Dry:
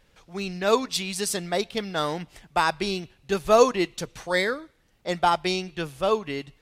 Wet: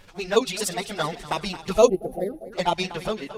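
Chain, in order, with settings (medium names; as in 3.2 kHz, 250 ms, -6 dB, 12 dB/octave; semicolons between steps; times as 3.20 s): fade out at the end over 0.54 s; in parallel at +2 dB: compression 6:1, threshold -35 dBFS, peak gain reduction 21.5 dB; on the sum: touch-sensitive flanger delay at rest 11.2 ms, full sweep at -15.5 dBFS; shuffle delay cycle 762 ms, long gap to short 1.5:1, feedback 34%, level -15.5 dB; reverse; upward compressor, threshold -36 dBFS; reverse; time-frequency box 3.67–4.95 s, 860–9500 Hz -26 dB; granular stretch 0.51×, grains 84 ms; trim +2.5 dB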